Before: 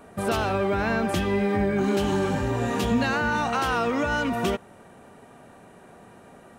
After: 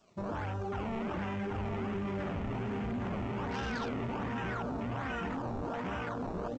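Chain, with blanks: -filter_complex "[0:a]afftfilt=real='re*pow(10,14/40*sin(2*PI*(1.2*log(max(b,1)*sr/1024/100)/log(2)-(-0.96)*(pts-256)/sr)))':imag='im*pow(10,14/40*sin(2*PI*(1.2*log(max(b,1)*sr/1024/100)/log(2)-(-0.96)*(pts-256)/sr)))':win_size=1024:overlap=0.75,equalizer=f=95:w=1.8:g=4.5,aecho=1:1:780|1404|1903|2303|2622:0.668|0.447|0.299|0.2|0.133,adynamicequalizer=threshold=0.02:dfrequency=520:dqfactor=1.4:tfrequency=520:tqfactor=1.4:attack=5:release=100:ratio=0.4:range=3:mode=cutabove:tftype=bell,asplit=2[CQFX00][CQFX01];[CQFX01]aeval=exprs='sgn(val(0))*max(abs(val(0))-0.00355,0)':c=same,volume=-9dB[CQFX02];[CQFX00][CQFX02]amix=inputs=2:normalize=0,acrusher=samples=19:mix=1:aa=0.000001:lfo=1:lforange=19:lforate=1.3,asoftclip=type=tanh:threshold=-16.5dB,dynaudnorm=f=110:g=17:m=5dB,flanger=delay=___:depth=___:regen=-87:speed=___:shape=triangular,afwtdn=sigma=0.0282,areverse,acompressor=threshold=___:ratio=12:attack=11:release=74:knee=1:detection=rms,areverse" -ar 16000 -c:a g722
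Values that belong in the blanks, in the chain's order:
1.5, 8, 0.59, -34dB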